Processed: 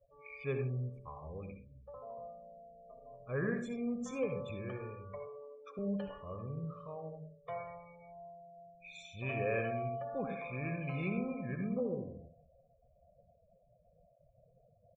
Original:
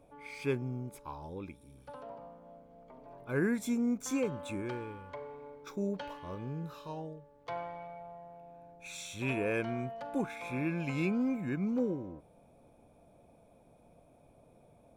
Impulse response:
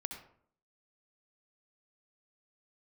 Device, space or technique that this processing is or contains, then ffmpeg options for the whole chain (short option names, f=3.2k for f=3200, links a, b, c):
microphone above a desk: -filter_complex "[0:a]aecho=1:1:1.7:0.7[a];[1:a]atrim=start_sample=2205[b];[a][b]afir=irnorm=-1:irlink=0,asettb=1/sr,asplit=3[c][d][e];[c]atrim=end=5.274[f];[d]atrim=start=5.27:end=5.79,asetpts=PTS-STARTPTS,afade=t=in:d=0.004:c=qsin,afade=t=out:st=0.516:d=0.004:c=qsin,highpass=150[g];[e]atrim=start=5.786[h];[f][g]acrossfade=d=0.004:c1=hsin:c2=qsin[i];[i][h]acrossfade=d=0.004:c1=qsin:c2=hsin,aemphasis=mode=reproduction:type=50kf,afftdn=nr=27:nf=-50,volume=-2dB"